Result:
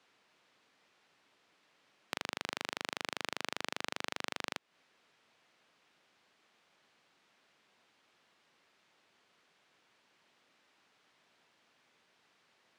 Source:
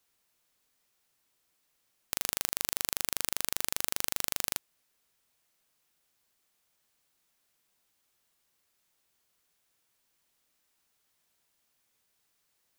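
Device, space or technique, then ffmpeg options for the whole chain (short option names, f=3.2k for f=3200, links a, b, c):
AM radio: -af "highpass=170,lowpass=3.2k,acompressor=threshold=-45dB:ratio=4,asoftclip=type=tanh:threshold=-23.5dB,volume=12dB"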